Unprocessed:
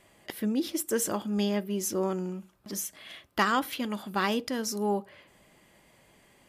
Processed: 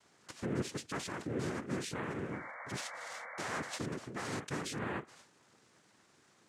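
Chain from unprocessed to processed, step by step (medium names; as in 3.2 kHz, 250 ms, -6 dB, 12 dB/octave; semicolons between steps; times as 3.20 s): peak limiter -24.5 dBFS, peak gain reduction 11.5 dB; noise-vocoded speech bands 3; painted sound noise, 2.31–3.79 s, 470–2300 Hz -41 dBFS; trim -5.5 dB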